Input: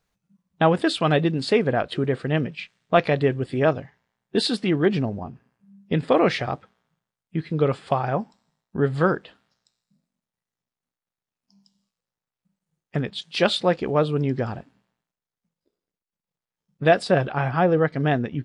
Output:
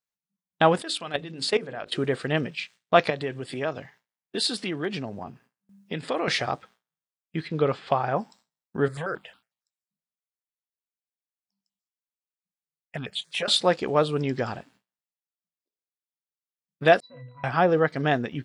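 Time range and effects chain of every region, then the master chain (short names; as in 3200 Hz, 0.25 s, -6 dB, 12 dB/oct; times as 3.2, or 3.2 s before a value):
0.82–1.93 level quantiser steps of 17 dB + notches 50/100/150/200/250/300/350/400/450/500 Hz
3.1–6.28 HPF 83 Hz 24 dB/oct + compressor 2:1, threshold -29 dBFS
7.47–8.15 crackle 130/s -44 dBFS + air absorption 160 m
8.88–13.48 compressor, threshold -21 dBFS + step phaser 11 Hz 790–1900 Hz
17–17.44 steep low-pass 6100 Hz + bell 420 Hz -9.5 dB 1.3 oct + octave resonator B, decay 0.46 s
whole clip: dynamic EQ 2600 Hz, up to -4 dB, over -36 dBFS, Q 0.94; gate with hold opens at -48 dBFS; tilt +2.5 dB/oct; gain +1.5 dB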